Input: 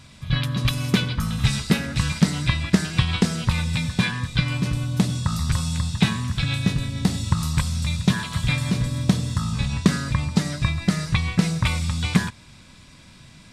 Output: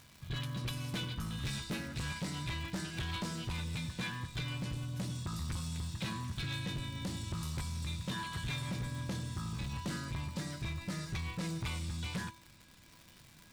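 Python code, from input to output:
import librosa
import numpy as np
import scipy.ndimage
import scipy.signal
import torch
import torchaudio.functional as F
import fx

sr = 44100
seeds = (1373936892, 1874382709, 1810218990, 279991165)

y = fx.dmg_crackle(x, sr, seeds[0], per_s=240.0, level_db=-31.0)
y = fx.comb_fb(y, sr, f0_hz=330.0, decay_s=0.5, harmonics='odd', damping=0.0, mix_pct=80)
y = np.clip(y, -10.0 ** (-33.5 / 20.0), 10.0 ** (-33.5 / 20.0))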